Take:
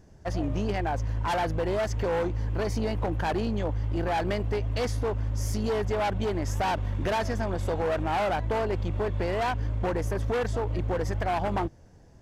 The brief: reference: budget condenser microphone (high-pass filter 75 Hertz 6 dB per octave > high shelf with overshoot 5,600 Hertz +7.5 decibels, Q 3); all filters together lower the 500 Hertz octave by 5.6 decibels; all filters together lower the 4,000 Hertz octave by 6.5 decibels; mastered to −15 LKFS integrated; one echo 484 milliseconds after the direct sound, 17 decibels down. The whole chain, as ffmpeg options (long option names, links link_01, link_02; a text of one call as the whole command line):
ffmpeg -i in.wav -af "highpass=frequency=75:poles=1,equalizer=frequency=500:width_type=o:gain=-7,equalizer=frequency=4000:width_type=o:gain=-5.5,highshelf=frequency=5600:width_type=q:width=3:gain=7.5,aecho=1:1:484:0.141,volume=17dB" out.wav